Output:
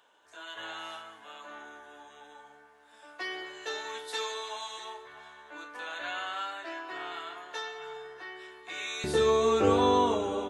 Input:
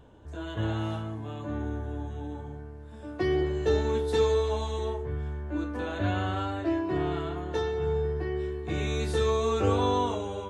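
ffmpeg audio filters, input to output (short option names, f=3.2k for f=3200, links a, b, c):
-filter_complex "[0:a]asetnsamples=n=441:p=0,asendcmd='9.04 highpass f 170',highpass=1.2k,asplit=2[a][b];[b]adelay=641.4,volume=-13dB,highshelf=f=4k:g=-14.4[c];[a][c]amix=inputs=2:normalize=0,volume=2.5dB"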